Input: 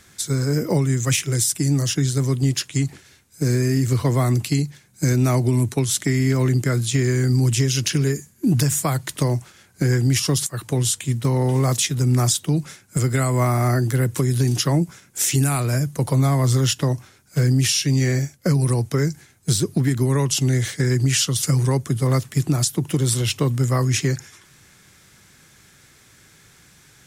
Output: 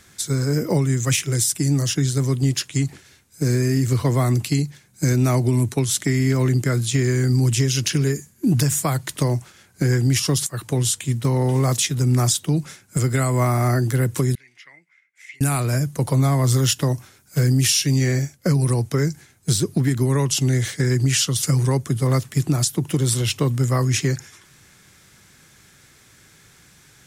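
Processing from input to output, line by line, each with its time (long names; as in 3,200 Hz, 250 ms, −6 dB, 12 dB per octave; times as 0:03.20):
0:14.35–0:15.41: resonant band-pass 2,100 Hz, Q 13
0:16.47–0:17.98: high-shelf EQ 10,000 Hz +8 dB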